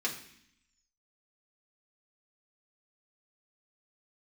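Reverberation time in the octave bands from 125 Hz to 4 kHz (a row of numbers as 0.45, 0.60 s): 0.90, 1.0, 0.60, 0.65, 0.85, 0.85 s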